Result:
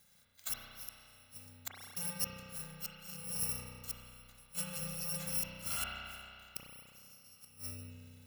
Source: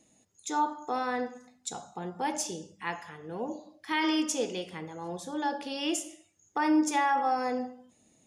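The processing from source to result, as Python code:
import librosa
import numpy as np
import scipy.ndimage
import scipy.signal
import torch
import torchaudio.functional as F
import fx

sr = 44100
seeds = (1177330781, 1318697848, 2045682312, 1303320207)

y = fx.bit_reversed(x, sr, seeds[0], block=128)
y = fx.gate_flip(y, sr, shuts_db=-23.0, range_db=-31)
y = fx.rev_spring(y, sr, rt60_s=2.4, pass_ms=(32,), chirp_ms=60, drr_db=-3.5)
y = y * librosa.db_to_amplitude(-2.0)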